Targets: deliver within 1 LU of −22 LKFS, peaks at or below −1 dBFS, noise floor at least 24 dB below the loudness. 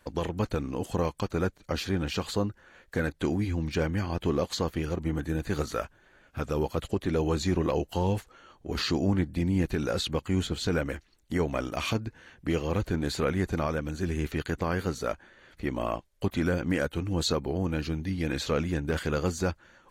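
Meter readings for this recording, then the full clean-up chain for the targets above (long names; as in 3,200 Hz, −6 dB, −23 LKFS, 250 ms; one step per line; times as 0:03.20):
integrated loudness −30.0 LKFS; sample peak −16.0 dBFS; target loudness −22.0 LKFS
→ level +8 dB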